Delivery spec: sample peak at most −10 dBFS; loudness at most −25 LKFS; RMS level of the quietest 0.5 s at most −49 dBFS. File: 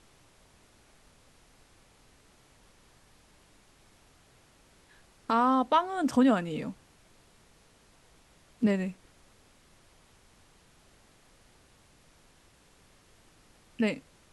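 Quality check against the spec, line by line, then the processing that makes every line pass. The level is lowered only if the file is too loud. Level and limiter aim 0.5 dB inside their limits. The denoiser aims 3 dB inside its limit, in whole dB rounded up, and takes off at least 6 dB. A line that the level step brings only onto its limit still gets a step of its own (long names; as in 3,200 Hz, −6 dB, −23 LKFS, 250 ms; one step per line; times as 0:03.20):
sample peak −12.5 dBFS: in spec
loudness −28.0 LKFS: in spec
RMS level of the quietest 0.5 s −61 dBFS: in spec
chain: no processing needed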